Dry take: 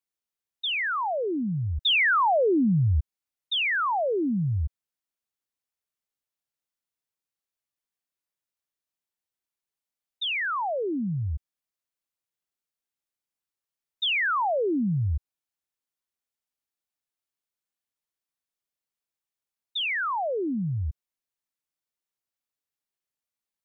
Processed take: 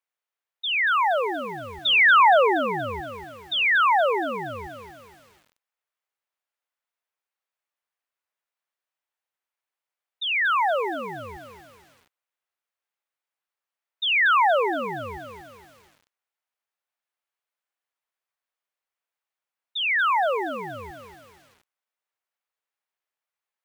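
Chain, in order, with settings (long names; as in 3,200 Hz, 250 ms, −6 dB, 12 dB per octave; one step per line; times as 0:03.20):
three-way crossover with the lows and the highs turned down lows −24 dB, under 470 Hz, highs −12 dB, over 2,800 Hz
feedback echo at a low word length 235 ms, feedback 55%, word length 9 bits, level −9 dB
level +7 dB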